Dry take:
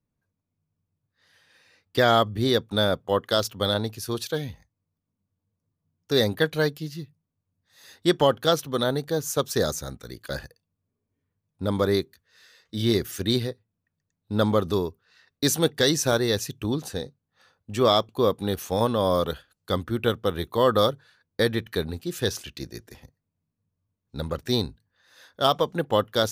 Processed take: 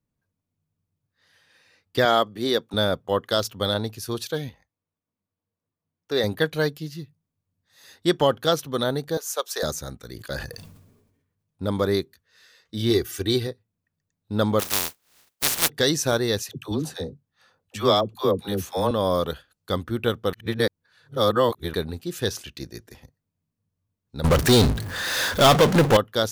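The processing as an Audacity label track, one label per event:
2.050000	2.740000	HPF 240 Hz
4.490000	6.240000	tone controls bass -11 dB, treble -8 dB
9.170000	9.630000	HPF 520 Hz 24 dB/oct
10.130000	11.700000	sustainer at most 50 dB/s
12.900000	13.470000	comb 2.6 ms, depth 59%
14.590000	15.680000	spectral contrast lowered exponent 0.11
16.420000	18.910000	dispersion lows, late by 71 ms, half as late at 540 Hz
20.330000	21.740000	reverse
24.240000	25.970000	power-law curve exponent 0.35

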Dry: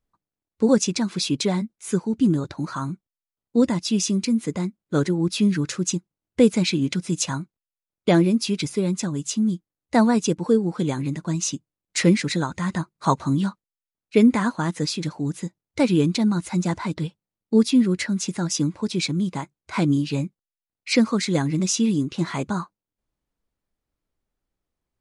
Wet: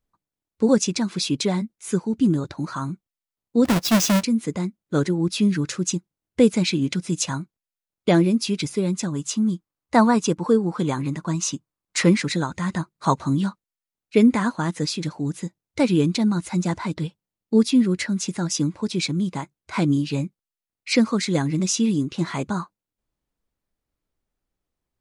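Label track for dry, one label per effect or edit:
3.650000	4.230000	half-waves squared off
9.120000	12.260000	bell 1100 Hz +7.5 dB 0.85 oct

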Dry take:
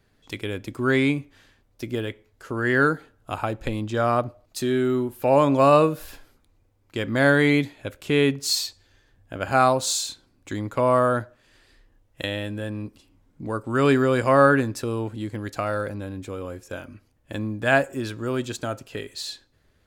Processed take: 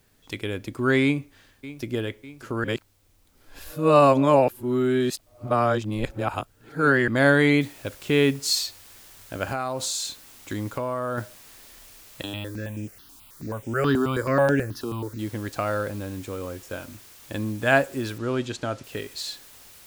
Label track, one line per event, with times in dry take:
1.030000	1.910000	echo throw 0.6 s, feedback 60%, level -16 dB
2.640000	7.080000	reverse
7.610000	7.610000	noise floor step -68 dB -49 dB
9.510000	11.180000	compressor 8:1, threshold -24 dBFS
12.230000	15.190000	step phaser 9.3 Hz 540–4200 Hz
18.180000	18.840000	LPF 6300 Hz

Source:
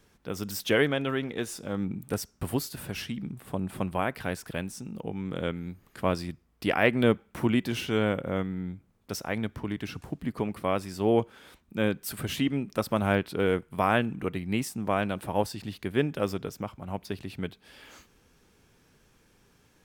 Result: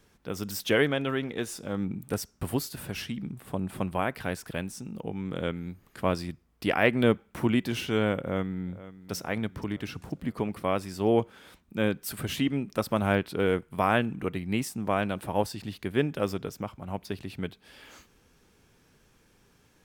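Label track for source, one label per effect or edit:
8.190000	9.150000	echo throw 0.48 s, feedback 60%, level -16 dB

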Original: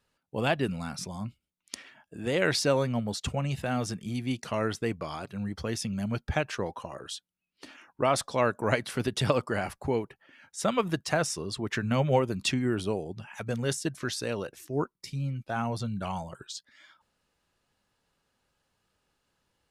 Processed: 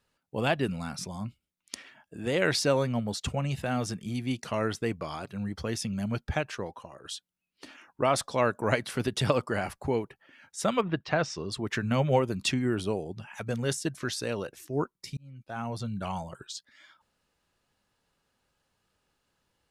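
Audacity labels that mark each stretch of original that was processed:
6.180000	7.040000	fade out, to -9 dB
10.800000	11.500000	LPF 2700 Hz -> 7200 Hz 24 dB/oct
15.170000	16.250000	fade in equal-power

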